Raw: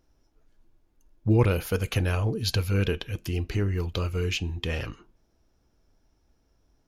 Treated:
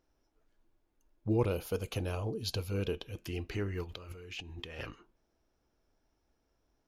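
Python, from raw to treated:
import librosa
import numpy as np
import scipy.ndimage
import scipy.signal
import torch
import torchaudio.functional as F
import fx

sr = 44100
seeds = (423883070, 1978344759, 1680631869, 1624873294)

y = fx.peak_eq(x, sr, hz=1800.0, db=-11.5, octaves=1.0, at=(1.28, 3.17))
y = fx.over_compress(y, sr, threshold_db=-38.0, ratio=-1.0, at=(3.83, 4.78), fade=0.02)
y = fx.bass_treble(y, sr, bass_db=-7, treble_db=-4)
y = F.gain(torch.from_numpy(y), -4.5).numpy()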